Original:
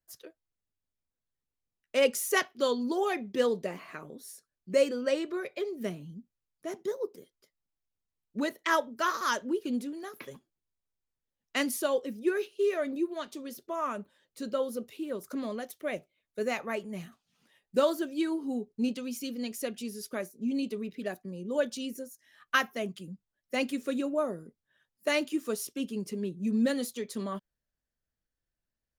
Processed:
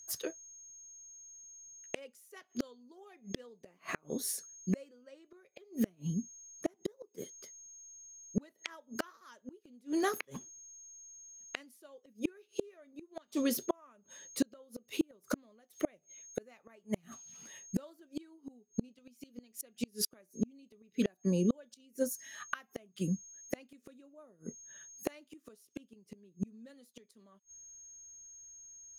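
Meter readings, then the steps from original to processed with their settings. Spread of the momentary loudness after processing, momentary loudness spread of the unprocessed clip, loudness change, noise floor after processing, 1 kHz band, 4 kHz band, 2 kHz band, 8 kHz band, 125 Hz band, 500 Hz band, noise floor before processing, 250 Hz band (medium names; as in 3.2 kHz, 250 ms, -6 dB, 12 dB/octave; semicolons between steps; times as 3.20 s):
21 LU, 16 LU, -8.0 dB, -74 dBFS, -12.5 dB, -8.5 dB, -12.0 dB, -0.5 dB, +4.0 dB, -11.5 dB, under -85 dBFS, -4.5 dB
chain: whistle 6.5 kHz -61 dBFS; inverted gate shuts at -29 dBFS, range -37 dB; trim +10.5 dB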